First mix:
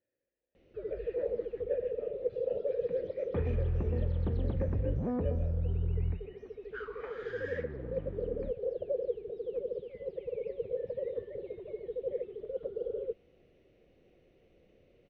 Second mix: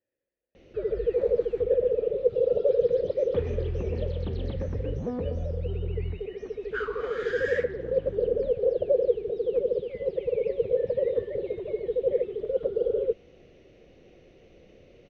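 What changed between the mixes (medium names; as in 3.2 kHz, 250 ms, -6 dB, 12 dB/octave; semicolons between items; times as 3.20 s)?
first sound +10.0 dB; master: remove distance through air 100 m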